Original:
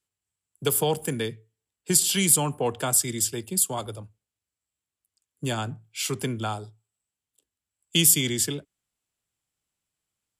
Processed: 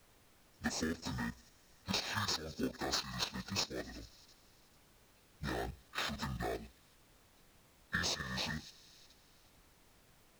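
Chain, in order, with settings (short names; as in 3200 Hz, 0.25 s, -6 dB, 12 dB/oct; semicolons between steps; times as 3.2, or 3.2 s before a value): pitch shift by moving bins -11 st; bell 1800 Hz +5 dB 2.2 oct; in parallel at -4 dB: decimation with a swept rate 21×, swing 60% 0.28 Hz; on the sum: thin delay 87 ms, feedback 78%, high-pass 3300 Hz, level -23.5 dB; level quantiser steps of 10 dB; low shelf 160 Hz -10.5 dB; added noise pink -63 dBFS; compressor 5:1, threshold -32 dBFS, peak gain reduction 13.5 dB; gain -2.5 dB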